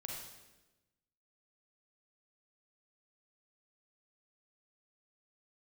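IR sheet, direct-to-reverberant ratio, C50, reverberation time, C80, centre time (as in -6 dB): -1.5 dB, 0.5 dB, 1.1 s, 3.5 dB, 62 ms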